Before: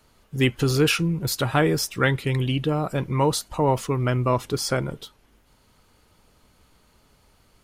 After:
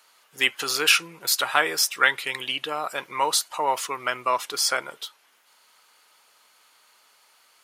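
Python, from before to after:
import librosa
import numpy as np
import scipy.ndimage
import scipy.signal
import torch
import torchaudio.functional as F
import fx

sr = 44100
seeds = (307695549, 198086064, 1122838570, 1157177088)

y = scipy.signal.sosfilt(scipy.signal.butter(2, 1000.0, 'highpass', fs=sr, output='sos'), x)
y = y * 10.0 ** (5.5 / 20.0)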